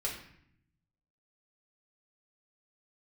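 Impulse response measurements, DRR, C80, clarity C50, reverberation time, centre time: -4.0 dB, 8.5 dB, 5.5 dB, 0.65 s, 32 ms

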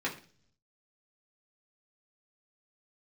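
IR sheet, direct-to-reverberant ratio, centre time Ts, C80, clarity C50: -5.0 dB, 17 ms, 16.0 dB, 11.5 dB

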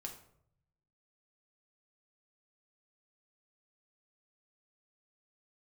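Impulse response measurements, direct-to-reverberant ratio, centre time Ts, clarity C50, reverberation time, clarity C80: 1.5 dB, 18 ms, 8.5 dB, 0.70 s, 12.5 dB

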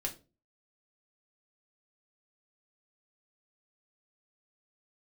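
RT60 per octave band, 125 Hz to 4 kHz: 0.45 s, 0.45 s, 0.40 s, 0.25 s, 0.25 s, 0.25 s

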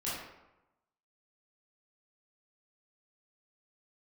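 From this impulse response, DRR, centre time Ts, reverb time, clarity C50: -9.5 dB, 71 ms, 0.95 s, -0.5 dB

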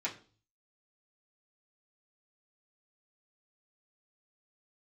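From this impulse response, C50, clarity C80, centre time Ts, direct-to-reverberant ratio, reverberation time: 13.0 dB, 17.5 dB, 15 ms, -7.5 dB, 0.40 s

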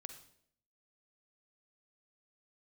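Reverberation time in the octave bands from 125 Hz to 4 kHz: 0.85 s, 0.80 s, 0.75 s, 0.55 s, 0.60 s, 0.55 s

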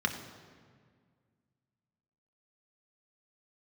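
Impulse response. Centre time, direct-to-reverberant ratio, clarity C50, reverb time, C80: 24 ms, 3.5 dB, 8.5 dB, 1.9 s, 9.5 dB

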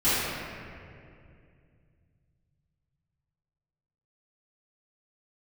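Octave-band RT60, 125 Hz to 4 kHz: 4.2 s, 3.1 s, 2.7 s, 2.1 s, 2.2 s, 1.4 s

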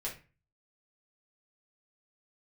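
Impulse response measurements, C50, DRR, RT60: 9.0 dB, -5.0 dB, 0.35 s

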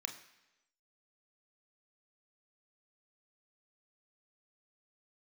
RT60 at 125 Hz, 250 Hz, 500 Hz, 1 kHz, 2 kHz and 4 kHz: 0.85 s, 0.95 s, 1.0 s, 0.95 s, 1.0 s, 1.0 s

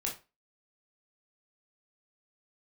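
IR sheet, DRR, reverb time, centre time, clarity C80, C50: -2.0 dB, 0.30 s, 23 ms, 16.5 dB, 9.0 dB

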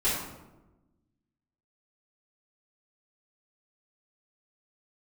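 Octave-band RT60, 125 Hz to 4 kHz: 1.5 s, 1.5 s, 1.2 s, 0.95 s, 0.75 s, 0.60 s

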